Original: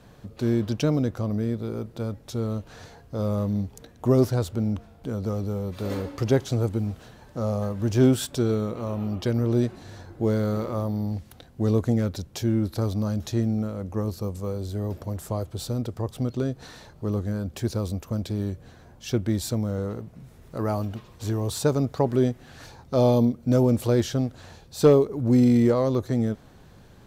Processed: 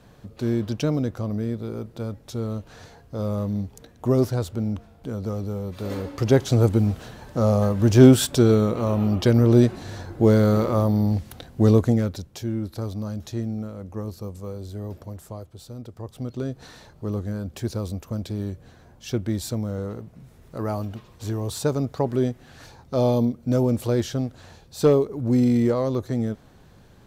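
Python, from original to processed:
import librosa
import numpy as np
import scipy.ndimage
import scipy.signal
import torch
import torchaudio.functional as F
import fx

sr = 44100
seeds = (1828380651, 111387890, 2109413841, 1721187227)

y = fx.gain(x, sr, db=fx.line((5.95, -0.5), (6.65, 7.0), (11.65, 7.0), (12.39, -4.0), (14.98, -4.0), (15.64, -11.0), (16.56, -1.0)))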